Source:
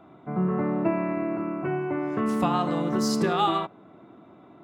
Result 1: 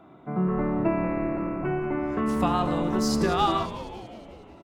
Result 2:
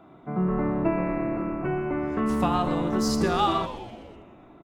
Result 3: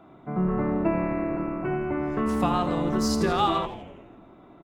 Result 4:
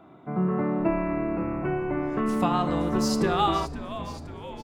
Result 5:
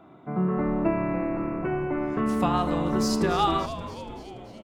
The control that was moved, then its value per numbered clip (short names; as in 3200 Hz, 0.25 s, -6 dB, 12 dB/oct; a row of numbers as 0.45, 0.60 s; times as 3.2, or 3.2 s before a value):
frequency-shifting echo, time: 183, 125, 83, 521, 287 ms